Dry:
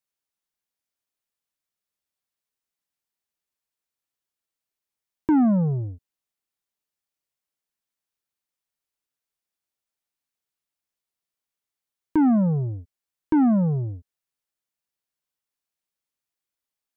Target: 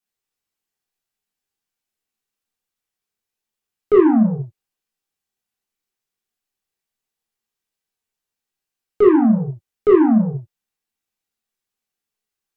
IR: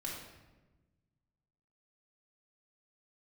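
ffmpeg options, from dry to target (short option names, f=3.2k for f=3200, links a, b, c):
-filter_complex "[1:a]atrim=start_sample=2205,afade=t=out:st=0.16:d=0.01,atrim=end_sample=7497[a];[0:a][a]afir=irnorm=-1:irlink=0,asetrate=59535,aresample=44100,volume=5.5dB"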